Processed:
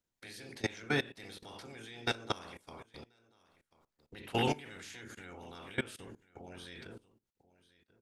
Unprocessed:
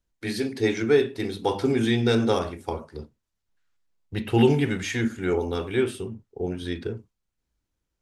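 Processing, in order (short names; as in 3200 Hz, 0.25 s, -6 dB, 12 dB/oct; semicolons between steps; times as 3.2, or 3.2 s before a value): spectral limiter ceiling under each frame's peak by 19 dB; echo 1.038 s -21 dB; level quantiser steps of 20 dB; gain -9 dB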